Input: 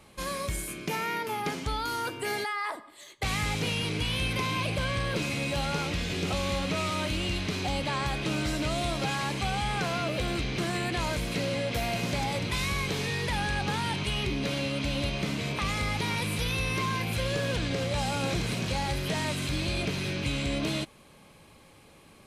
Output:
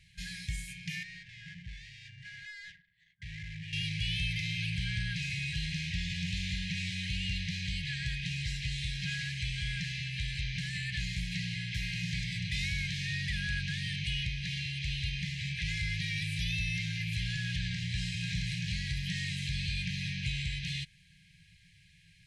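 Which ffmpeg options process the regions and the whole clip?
-filter_complex "[0:a]asettb=1/sr,asplit=3[a][b][c];[a]atrim=end=1.034[d];[b]atrim=start=1.03:end=3.73,asetpts=PTS-STARTPTS,afade=t=in:d=0.004:c=qsin,afade=t=out:st=2.696:d=0.004:c=qsin,asoftclip=type=hard:threshold=-35dB,highpass=40,adynamicsmooth=sensitivity=7.5:basefreq=860[e];[c]atrim=start=3.726[f];[d][e]acrossfade=d=0.004:c1=hsin:c2=qsin[g];[g][f]acrossfade=d=0.004:c1=qsin:c2=hsin,afftfilt=real='re*(1-between(b*sr/4096,190,1600))':imag='im*(1-between(b*sr/4096,190,1600))':win_size=4096:overlap=0.75,lowpass=6.2k,volume=-2.5dB"

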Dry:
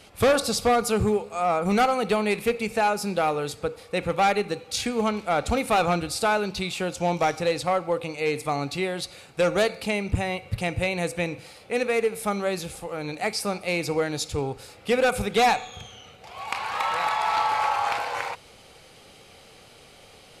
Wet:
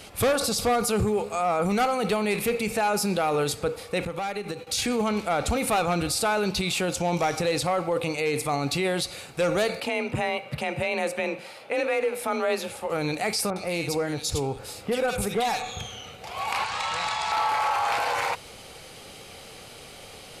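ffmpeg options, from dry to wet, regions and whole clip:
-filter_complex "[0:a]asettb=1/sr,asplit=3[a][b][c];[a]atrim=end=4.054[d];[b]atrim=start=4.05:end=4.67,asetpts=PTS-STARTPTS,afade=t=in:d=0.004:c=qsin,afade=t=out:st=0.616:d=0.004:c=qsin,agate=range=-33dB:threshold=-39dB:ratio=3:release=100:detection=peak,acompressor=threshold=-33dB:ratio=12:attack=3.2:release=140:knee=1:detection=peak[e];[c]atrim=start=4.666[f];[d][e]acrossfade=d=0.004:c1=hsin:c2=qsin[g];[g][f]acrossfade=d=0.004:c1=qsin:c2=hsin,asettb=1/sr,asplit=3[h][i][j];[h]atrim=end=9.804[k];[i]atrim=start=9.8:end=12.9,asetpts=PTS-STARTPTS,afade=t=in:d=0.004:c=qsin,afade=t=out:st=3.096:d=0.004:c=qsin,bass=f=250:g=-11,treble=f=4k:g=-10,afreqshift=34[l];[j]atrim=start=12.896[m];[k][l]acrossfade=d=0.004:c1=hsin:c2=qsin[n];[n][m]acrossfade=d=0.004:c1=qsin:c2=hsin,asettb=1/sr,asplit=3[o][p][q];[o]atrim=end=13.504[r];[p]atrim=start=13.5:end=15.79,asetpts=PTS-STARTPTS,afade=t=in:d=0.004:c=qsin,afade=t=out:st=2.286:d=0.004:c=qsin,acompressor=threshold=-30dB:ratio=3:attack=3.2:release=140:knee=1:detection=peak,acrossover=split=2000[s][t];[t]adelay=60[u];[s][u]amix=inputs=2:normalize=0,atrim=end_sample=100989[v];[q]atrim=start=15.786[w];[r][v]acrossfade=d=0.004:c1=hsin:c2=qsin[x];[x][w]acrossfade=d=0.004:c1=qsin:c2=hsin,asettb=1/sr,asplit=3[y][z][aa];[y]atrim=end=16.644[ab];[z]atrim=start=16.64:end=17.32,asetpts=PTS-STARTPTS,afade=t=in:d=0.004:c=qsin,afade=t=out:st=0.676:d=0.004:c=qsin,lowpass=f=8.4k:w=0.5412,lowpass=f=8.4k:w=1.3066,acrossover=split=180|3000[ac][ad][ae];[ad]acompressor=threshold=-41dB:ratio=2:attack=3.2:release=140:knee=2.83:detection=peak[af];[ac][af][ae]amix=inputs=3:normalize=0[ag];[aa]atrim=start=17.316[ah];[ab][ag]acrossfade=d=0.004:c1=hsin:c2=qsin[ai];[ai][ah]acrossfade=d=0.004:c1=qsin:c2=hsin,highshelf=f=9.1k:g=6,alimiter=limit=-23dB:level=0:latency=1:release=16,volume=5.5dB"

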